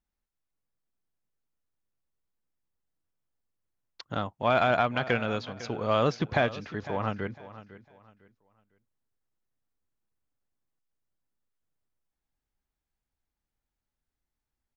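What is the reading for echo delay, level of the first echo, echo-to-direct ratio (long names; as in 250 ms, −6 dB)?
503 ms, −16.0 dB, −15.5 dB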